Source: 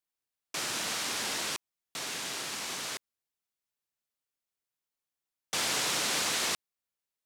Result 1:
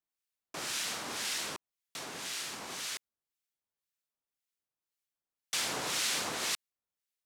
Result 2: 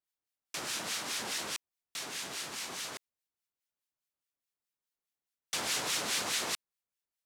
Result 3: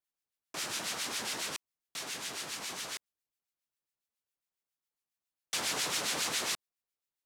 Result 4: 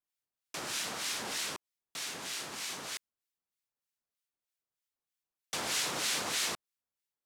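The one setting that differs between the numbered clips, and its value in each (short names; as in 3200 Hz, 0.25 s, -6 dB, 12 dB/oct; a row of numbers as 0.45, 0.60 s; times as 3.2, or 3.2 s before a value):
harmonic tremolo, rate: 1.9, 4.8, 7.3, 3.2 Hz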